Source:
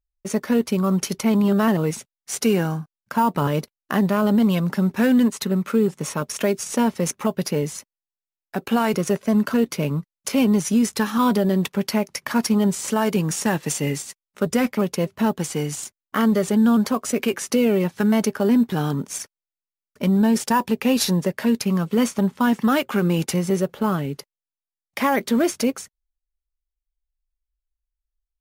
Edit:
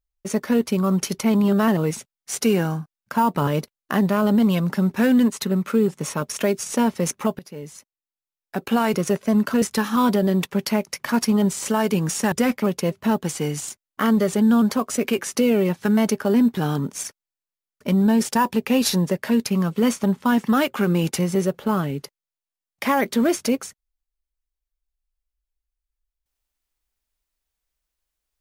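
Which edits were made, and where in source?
7.39–8.62 fade in, from -21 dB
9.62–10.84 cut
13.54–14.47 cut

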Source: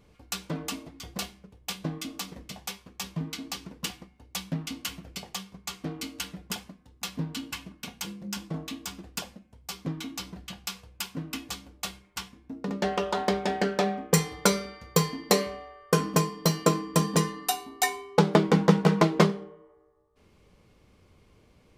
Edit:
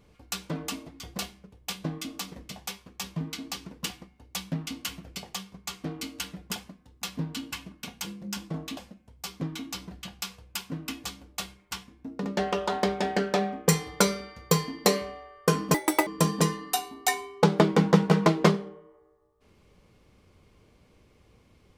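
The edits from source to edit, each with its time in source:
8.77–9.22 cut
16.19–16.82 speed 192%

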